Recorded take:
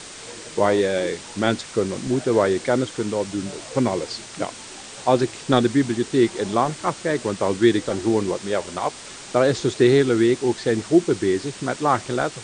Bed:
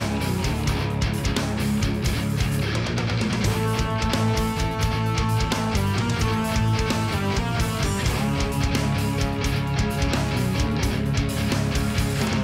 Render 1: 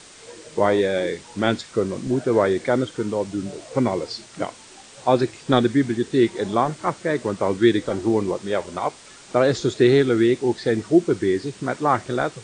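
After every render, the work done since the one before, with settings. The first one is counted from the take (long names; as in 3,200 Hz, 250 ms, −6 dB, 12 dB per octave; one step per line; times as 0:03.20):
noise reduction from a noise print 7 dB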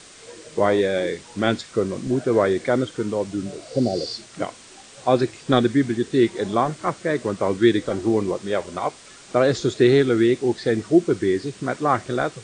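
notch filter 890 Hz, Q 12
0:03.62–0:04.08: healed spectral selection 790–7,900 Hz both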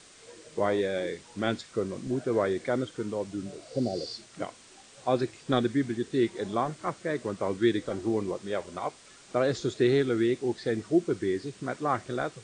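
level −8 dB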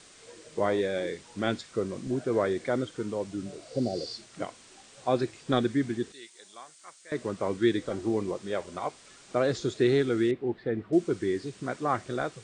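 0:06.12–0:07.12: first difference
0:10.31–0:10.93: high-frequency loss of the air 480 metres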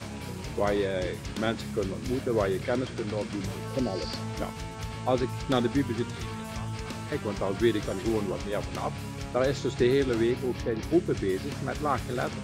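mix in bed −13.5 dB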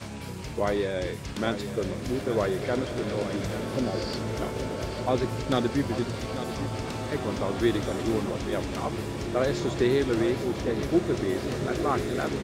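single-tap delay 844 ms −11 dB
slow-attack reverb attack 2,380 ms, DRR 5.5 dB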